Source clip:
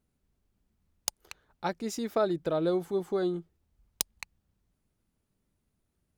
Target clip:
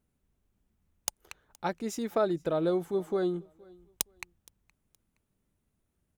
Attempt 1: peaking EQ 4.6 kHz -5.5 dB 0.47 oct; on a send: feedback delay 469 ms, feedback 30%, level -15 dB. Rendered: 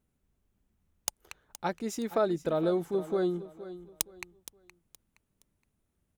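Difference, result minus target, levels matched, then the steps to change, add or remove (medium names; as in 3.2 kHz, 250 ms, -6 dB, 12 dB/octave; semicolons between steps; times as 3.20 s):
echo-to-direct +11 dB
change: feedback delay 469 ms, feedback 30%, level -26 dB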